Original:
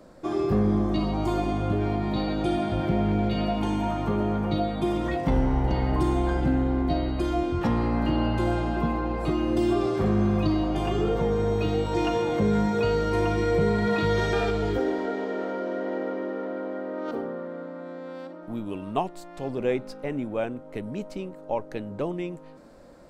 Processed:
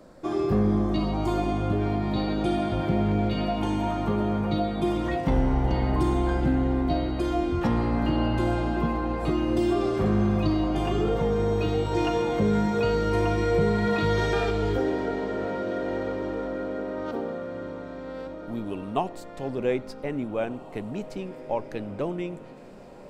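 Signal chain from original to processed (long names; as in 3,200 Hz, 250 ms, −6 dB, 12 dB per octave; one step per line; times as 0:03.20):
feedback delay with all-pass diffusion 1,688 ms, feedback 50%, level −16 dB
on a send at −24 dB: convolution reverb RT60 0.45 s, pre-delay 50 ms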